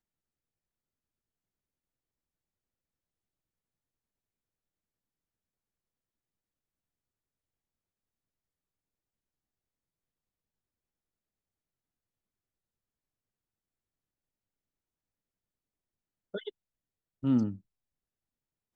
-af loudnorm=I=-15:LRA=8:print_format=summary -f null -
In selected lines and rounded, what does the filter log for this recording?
Input Integrated:    -31.9 LUFS
Input True Peak:     -16.6 dBTP
Input LRA:            14.0 LU
Input Threshold:     -43.1 LUFS